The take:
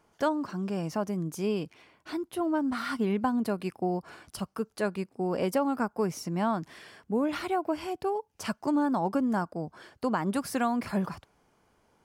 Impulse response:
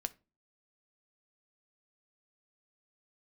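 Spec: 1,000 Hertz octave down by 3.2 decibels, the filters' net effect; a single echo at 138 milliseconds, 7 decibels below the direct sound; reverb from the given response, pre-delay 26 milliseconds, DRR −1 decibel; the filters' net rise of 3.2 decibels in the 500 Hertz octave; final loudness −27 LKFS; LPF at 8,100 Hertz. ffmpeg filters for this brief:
-filter_complex "[0:a]lowpass=8100,equalizer=frequency=500:width_type=o:gain=6,equalizer=frequency=1000:width_type=o:gain=-7,aecho=1:1:138:0.447,asplit=2[link_01][link_02];[1:a]atrim=start_sample=2205,adelay=26[link_03];[link_02][link_03]afir=irnorm=-1:irlink=0,volume=2dB[link_04];[link_01][link_04]amix=inputs=2:normalize=0,volume=-2dB"

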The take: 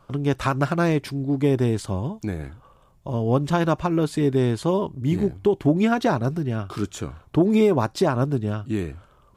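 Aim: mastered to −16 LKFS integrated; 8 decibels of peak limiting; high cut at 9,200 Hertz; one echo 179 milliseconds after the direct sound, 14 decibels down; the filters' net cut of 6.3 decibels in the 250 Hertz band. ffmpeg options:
ffmpeg -i in.wav -af "lowpass=9200,equalizer=frequency=250:width_type=o:gain=-9,alimiter=limit=-18dB:level=0:latency=1,aecho=1:1:179:0.2,volume=12.5dB" out.wav

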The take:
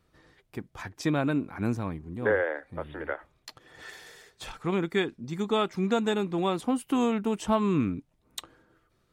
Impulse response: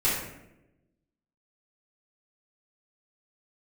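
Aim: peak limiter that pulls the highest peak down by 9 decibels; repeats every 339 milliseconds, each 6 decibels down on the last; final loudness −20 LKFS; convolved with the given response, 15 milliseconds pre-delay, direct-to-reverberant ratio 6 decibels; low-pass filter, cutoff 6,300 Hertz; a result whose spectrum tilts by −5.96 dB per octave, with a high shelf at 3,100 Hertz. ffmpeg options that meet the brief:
-filter_complex "[0:a]lowpass=6300,highshelf=frequency=3100:gain=-3,alimiter=limit=-22dB:level=0:latency=1,aecho=1:1:339|678|1017|1356|1695|2034:0.501|0.251|0.125|0.0626|0.0313|0.0157,asplit=2[link_01][link_02];[1:a]atrim=start_sample=2205,adelay=15[link_03];[link_02][link_03]afir=irnorm=-1:irlink=0,volume=-18dB[link_04];[link_01][link_04]amix=inputs=2:normalize=0,volume=11dB"

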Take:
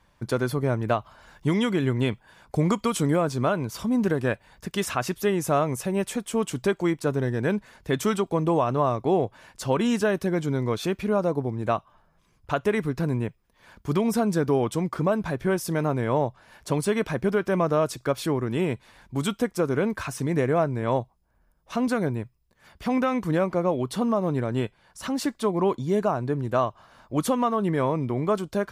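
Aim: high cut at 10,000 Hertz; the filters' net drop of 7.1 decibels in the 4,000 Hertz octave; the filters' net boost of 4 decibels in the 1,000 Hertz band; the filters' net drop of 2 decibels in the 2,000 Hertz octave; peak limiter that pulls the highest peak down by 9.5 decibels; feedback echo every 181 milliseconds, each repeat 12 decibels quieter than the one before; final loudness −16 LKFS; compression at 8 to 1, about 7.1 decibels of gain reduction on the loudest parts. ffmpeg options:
ffmpeg -i in.wav -af "lowpass=10000,equalizer=frequency=1000:width_type=o:gain=6.5,equalizer=frequency=2000:width_type=o:gain=-4,equalizer=frequency=4000:width_type=o:gain=-8.5,acompressor=threshold=-23dB:ratio=8,alimiter=limit=-21.5dB:level=0:latency=1,aecho=1:1:181|362|543:0.251|0.0628|0.0157,volume=16dB" out.wav

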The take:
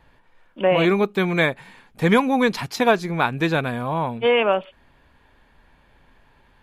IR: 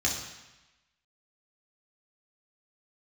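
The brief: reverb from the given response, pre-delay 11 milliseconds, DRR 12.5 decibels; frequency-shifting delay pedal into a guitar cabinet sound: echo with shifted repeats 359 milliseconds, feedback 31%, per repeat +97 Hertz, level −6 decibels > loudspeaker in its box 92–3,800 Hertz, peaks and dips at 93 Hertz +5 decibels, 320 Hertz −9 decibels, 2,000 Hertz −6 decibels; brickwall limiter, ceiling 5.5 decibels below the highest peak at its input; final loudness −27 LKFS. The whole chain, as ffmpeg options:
-filter_complex "[0:a]alimiter=limit=-10.5dB:level=0:latency=1,asplit=2[link_01][link_02];[1:a]atrim=start_sample=2205,adelay=11[link_03];[link_02][link_03]afir=irnorm=-1:irlink=0,volume=-21dB[link_04];[link_01][link_04]amix=inputs=2:normalize=0,asplit=5[link_05][link_06][link_07][link_08][link_09];[link_06]adelay=359,afreqshift=97,volume=-6dB[link_10];[link_07]adelay=718,afreqshift=194,volume=-16.2dB[link_11];[link_08]adelay=1077,afreqshift=291,volume=-26.3dB[link_12];[link_09]adelay=1436,afreqshift=388,volume=-36.5dB[link_13];[link_05][link_10][link_11][link_12][link_13]amix=inputs=5:normalize=0,highpass=92,equalizer=frequency=93:width_type=q:width=4:gain=5,equalizer=frequency=320:width_type=q:width=4:gain=-9,equalizer=frequency=2000:width_type=q:width=4:gain=-6,lowpass=frequency=3800:width=0.5412,lowpass=frequency=3800:width=1.3066,volume=-4.5dB"

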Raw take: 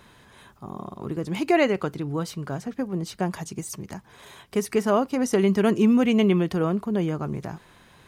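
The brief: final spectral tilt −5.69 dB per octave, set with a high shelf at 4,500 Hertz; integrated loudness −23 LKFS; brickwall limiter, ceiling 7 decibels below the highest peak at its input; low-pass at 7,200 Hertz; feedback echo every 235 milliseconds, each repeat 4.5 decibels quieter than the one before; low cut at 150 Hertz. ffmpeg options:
ffmpeg -i in.wav -af "highpass=150,lowpass=7200,highshelf=frequency=4500:gain=5.5,alimiter=limit=-14.5dB:level=0:latency=1,aecho=1:1:235|470|705|940|1175|1410|1645|1880|2115:0.596|0.357|0.214|0.129|0.0772|0.0463|0.0278|0.0167|0.01,volume=2dB" out.wav

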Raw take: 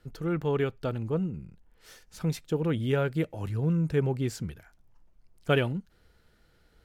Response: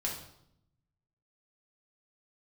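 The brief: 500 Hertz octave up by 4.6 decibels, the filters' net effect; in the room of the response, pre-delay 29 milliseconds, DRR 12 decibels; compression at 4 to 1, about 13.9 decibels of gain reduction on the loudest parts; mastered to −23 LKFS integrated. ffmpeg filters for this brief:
-filter_complex "[0:a]equalizer=frequency=500:width_type=o:gain=5.5,acompressor=threshold=-34dB:ratio=4,asplit=2[link_01][link_02];[1:a]atrim=start_sample=2205,adelay=29[link_03];[link_02][link_03]afir=irnorm=-1:irlink=0,volume=-15dB[link_04];[link_01][link_04]amix=inputs=2:normalize=0,volume=14dB"

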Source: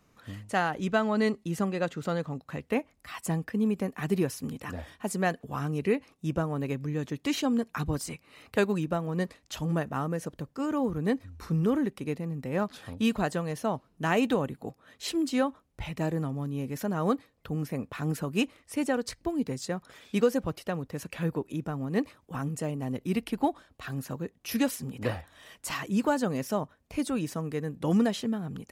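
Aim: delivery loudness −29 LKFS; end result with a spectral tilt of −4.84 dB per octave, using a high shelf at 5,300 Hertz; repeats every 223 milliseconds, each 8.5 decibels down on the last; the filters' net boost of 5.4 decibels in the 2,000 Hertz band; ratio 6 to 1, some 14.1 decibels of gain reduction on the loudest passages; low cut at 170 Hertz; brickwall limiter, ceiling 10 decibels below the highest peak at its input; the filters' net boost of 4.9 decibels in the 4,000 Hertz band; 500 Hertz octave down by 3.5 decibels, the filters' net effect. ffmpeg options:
ffmpeg -i in.wav -af "highpass=170,equalizer=frequency=500:width_type=o:gain=-4.5,equalizer=frequency=2000:width_type=o:gain=6.5,equalizer=frequency=4000:width_type=o:gain=7,highshelf=frequency=5300:gain=-7.5,acompressor=threshold=-37dB:ratio=6,alimiter=level_in=6.5dB:limit=-24dB:level=0:latency=1,volume=-6.5dB,aecho=1:1:223|446|669|892:0.376|0.143|0.0543|0.0206,volume=13dB" out.wav

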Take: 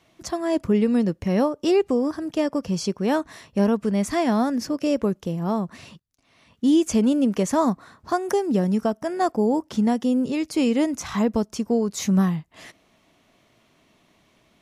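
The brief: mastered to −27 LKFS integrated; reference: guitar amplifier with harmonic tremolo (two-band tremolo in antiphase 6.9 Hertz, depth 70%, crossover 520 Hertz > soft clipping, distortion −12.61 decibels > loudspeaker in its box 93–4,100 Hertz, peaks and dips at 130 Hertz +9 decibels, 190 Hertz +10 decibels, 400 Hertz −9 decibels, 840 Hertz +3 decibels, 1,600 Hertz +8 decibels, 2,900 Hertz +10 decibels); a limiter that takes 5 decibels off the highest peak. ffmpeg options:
ffmpeg -i in.wav -filter_complex "[0:a]alimiter=limit=-15.5dB:level=0:latency=1,acrossover=split=520[link_01][link_02];[link_01]aeval=exprs='val(0)*(1-0.7/2+0.7/2*cos(2*PI*6.9*n/s))':channel_layout=same[link_03];[link_02]aeval=exprs='val(0)*(1-0.7/2-0.7/2*cos(2*PI*6.9*n/s))':channel_layout=same[link_04];[link_03][link_04]amix=inputs=2:normalize=0,asoftclip=threshold=-24.5dB,highpass=93,equalizer=frequency=130:width_type=q:width=4:gain=9,equalizer=frequency=190:width_type=q:width=4:gain=10,equalizer=frequency=400:width_type=q:width=4:gain=-9,equalizer=frequency=840:width_type=q:width=4:gain=3,equalizer=frequency=1600:width_type=q:width=4:gain=8,equalizer=frequency=2900:width_type=q:width=4:gain=10,lowpass=frequency=4100:width=0.5412,lowpass=frequency=4100:width=1.3066,volume=0.5dB" out.wav

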